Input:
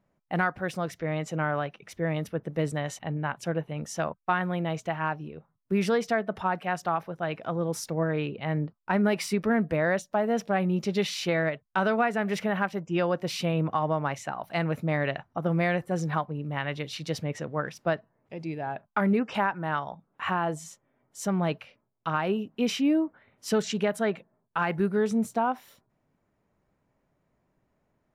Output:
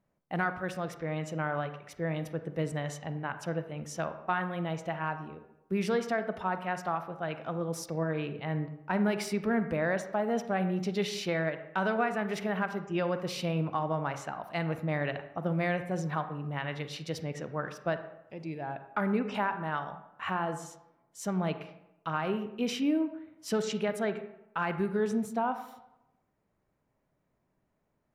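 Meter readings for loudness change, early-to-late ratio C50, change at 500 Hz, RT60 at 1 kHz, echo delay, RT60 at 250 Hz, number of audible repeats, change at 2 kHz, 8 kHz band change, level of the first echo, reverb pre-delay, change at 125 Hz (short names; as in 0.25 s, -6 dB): -4.0 dB, 10.5 dB, -4.0 dB, 0.90 s, none, 0.90 s, none, -4.0 dB, -4.5 dB, none, 36 ms, -4.0 dB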